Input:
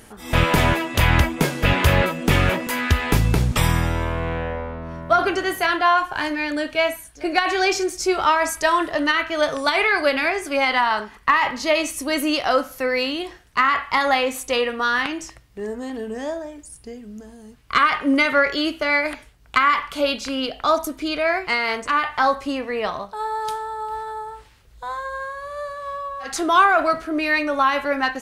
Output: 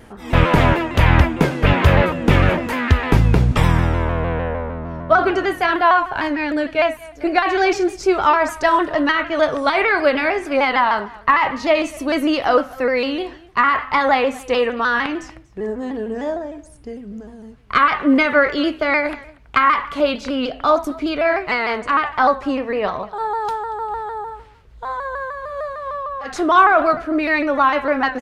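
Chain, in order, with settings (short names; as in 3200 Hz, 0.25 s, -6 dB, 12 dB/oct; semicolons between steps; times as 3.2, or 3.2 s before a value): LPF 1700 Hz 6 dB/oct; echo 0.235 s -21.5 dB; shaped vibrato saw down 6.6 Hz, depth 100 cents; gain +4.5 dB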